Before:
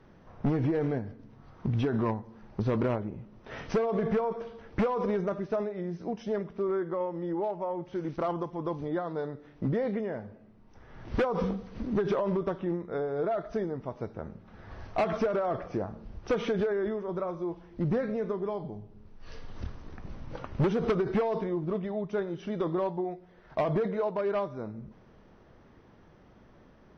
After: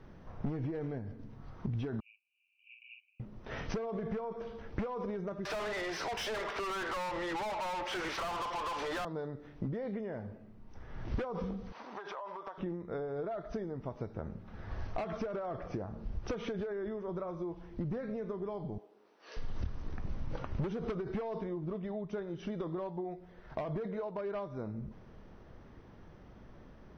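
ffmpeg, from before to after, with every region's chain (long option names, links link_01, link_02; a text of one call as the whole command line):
ffmpeg -i in.wav -filter_complex "[0:a]asettb=1/sr,asplit=3[link_01][link_02][link_03];[link_01]atrim=end=2.004[link_04];[link_02]atrim=start=2:end=3.2,asetpts=PTS-STARTPTS,afade=type=in:duration=0.004:curve=qsin,afade=type=out:start_time=1.196:duration=0.004:curve=qsin,asuperpass=centerf=2600:order=12:qfactor=4.3,asplit=2[link_05][link_06];[link_06]adelay=46,volume=-5dB[link_07];[link_05][link_07]amix=inputs=2:normalize=0,atrim=end_sample=52920[link_08];[link_03]atrim=start=3.196[link_09];[link_04][link_08]acrossfade=duration=0.004:curve1=hsin:curve2=qsin[link_10];[link_10][link_09]acrossfade=duration=0.004:curve1=qsin:curve2=hsin,asettb=1/sr,asplit=3[link_11][link_12][link_13];[link_11]atrim=end=5.454[link_14];[link_12]atrim=start=5.45:end=9.05,asetpts=PTS-STARTPTS,afade=type=in:duration=0.004:curve=qsin,afade=type=out:start_time=3.596:duration=0.004:curve=qsin,highpass=890,asplit=2[link_15][link_16];[link_16]highpass=frequency=720:poles=1,volume=38dB,asoftclip=type=tanh:threshold=-24dB[link_17];[link_15][link_17]amix=inputs=2:normalize=0,lowpass=frequency=3700:poles=1,volume=-6dB[link_18];[link_13]atrim=start=9.046[link_19];[link_14][link_18]acrossfade=duration=0.004:curve1=hsin:curve2=qsin[link_20];[link_20][link_19]acrossfade=duration=0.004:curve1=qsin:curve2=hsin,asettb=1/sr,asplit=3[link_21][link_22][link_23];[link_21]atrim=end=11.724[link_24];[link_22]atrim=start=11.72:end=12.58,asetpts=PTS-STARTPTS,afade=type=in:duration=0.004:curve=qsin,afade=type=out:start_time=0.856:duration=0.004:curve=qsin,highpass=frequency=880:width_type=q:width=2.4,acompressor=threshold=-41dB:ratio=4:attack=3.2:release=140:knee=1:detection=peak[link_25];[link_23]atrim=start=12.576[link_26];[link_24][link_25]acrossfade=duration=0.004:curve1=hsin:curve2=qsin[link_27];[link_27][link_26]acrossfade=duration=0.004:curve1=qsin:curve2=hsin,asettb=1/sr,asplit=3[link_28][link_29][link_30];[link_28]atrim=end=18.784[link_31];[link_29]atrim=start=18.78:end=19.37,asetpts=PTS-STARTPTS,afade=type=in:duration=0.004:curve=qsin,afade=type=out:start_time=0.586:duration=0.004:curve=qsin,highpass=frequency=360:width=0.5412,highpass=frequency=360:width=1.3066,asplit=2[link_32][link_33];[link_33]adelay=16,volume=-10.5dB[link_34];[link_32][link_34]amix=inputs=2:normalize=0,atrim=end_sample=26019[link_35];[link_30]atrim=start=19.366[link_36];[link_31][link_35]acrossfade=duration=0.004:curve1=hsin:curve2=qsin[link_37];[link_37][link_36]acrossfade=duration=0.004:curve1=qsin:curve2=hsin,acompressor=threshold=-36dB:ratio=6,lowshelf=frequency=100:gain=7.5" out.wav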